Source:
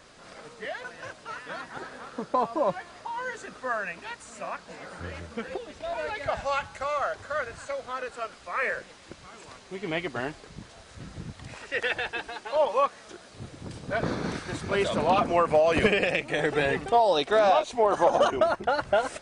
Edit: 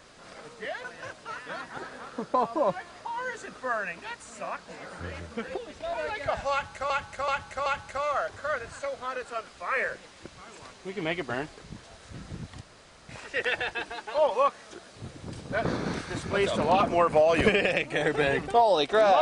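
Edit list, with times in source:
6.52–6.90 s: loop, 4 plays
11.47 s: insert room tone 0.48 s

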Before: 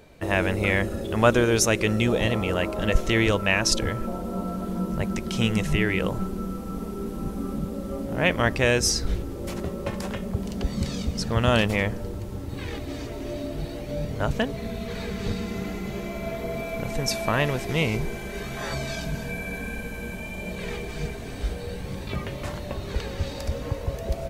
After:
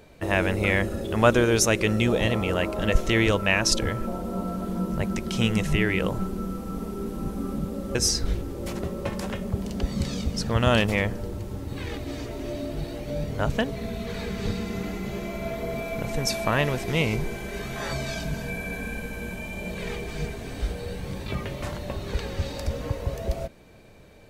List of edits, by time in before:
7.95–8.76 s: delete

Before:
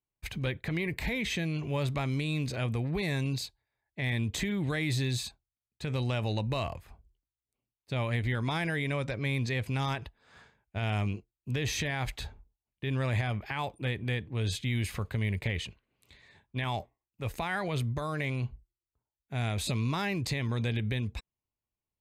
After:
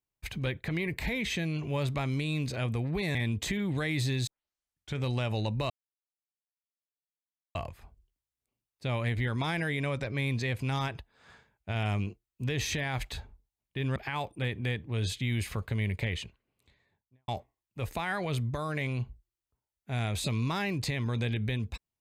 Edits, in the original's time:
3.15–4.07 s: delete
5.19 s: tape start 0.71 s
6.62 s: insert silence 1.85 s
13.03–13.39 s: delete
15.57–16.71 s: studio fade out

